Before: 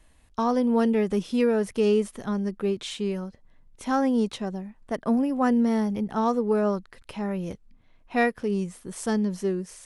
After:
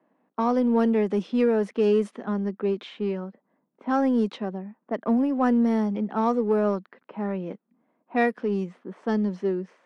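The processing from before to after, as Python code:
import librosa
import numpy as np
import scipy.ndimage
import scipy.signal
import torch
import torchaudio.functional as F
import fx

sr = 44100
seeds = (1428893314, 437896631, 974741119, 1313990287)

p1 = fx.env_lowpass(x, sr, base_hz=1000.0, full_db=-18.5)
p2 = scipy.signal.sosfilt(scipy.signal.butter(6, 190.0, 'highpass', fs=sr, output='sos'), p1)
p3 = np.clip(p2, -10.0 ** (-27.0 / 20.0), 10.0 ** (-27.0 / 20.0))
p4 = p2 + (p3 * 10.0 ** (-11.0 / 20.0))
y = fx.lowpass(p4, sr, hz=2500.0, slope=6)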